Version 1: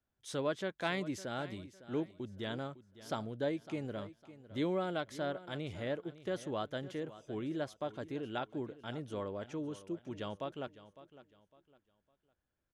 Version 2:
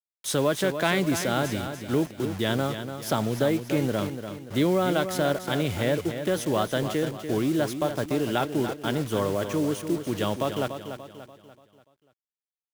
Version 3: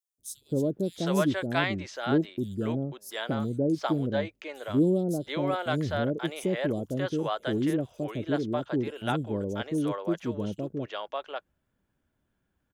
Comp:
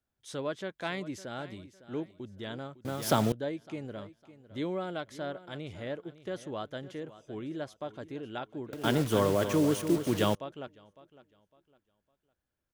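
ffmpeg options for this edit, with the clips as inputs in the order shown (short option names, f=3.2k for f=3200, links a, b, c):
-filter_complex "[1:a]asplit=2[a][b];[0:a]asplit=3[c][d][e];[c]atrim=end=2.852[f];[a]atrim=start=2.848:end=3.322[g];[d]atrim=start=3.318:end=8.732[h];[b]atrim=start=8.728:end=10.352[i];[e]atrim=start=10.348[j];[f][g]acrossfade=d=0.004:c1=hsin:c2=hsin[k];[k][h]acrossfade=d=0.004:c1=hsin:c2=hsin[l];[l][i]acrossfade=d=0.004:c1=hsin:c2=hsin[m];[m][j]acrossfade=d=0.004:c1=hsin:c2=hsin"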